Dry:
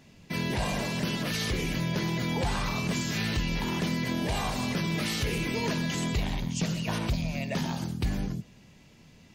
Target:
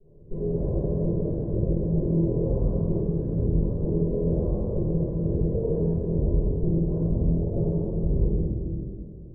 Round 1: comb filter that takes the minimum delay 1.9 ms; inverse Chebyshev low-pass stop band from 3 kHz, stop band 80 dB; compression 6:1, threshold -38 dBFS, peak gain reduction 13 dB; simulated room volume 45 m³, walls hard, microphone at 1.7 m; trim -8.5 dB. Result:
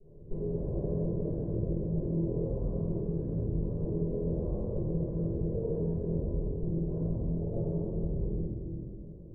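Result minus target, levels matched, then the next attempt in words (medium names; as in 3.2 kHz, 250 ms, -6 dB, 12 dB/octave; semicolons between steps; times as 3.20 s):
compression: peak gain reduction +13 dB
comb filter that takes the minimum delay 1.9 ms; inverse Chebyshev low-pass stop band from 3 kHz, stop band 80 dB; simulated room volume 45 m³, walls hard, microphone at 1.7 m; trim -8.5 dB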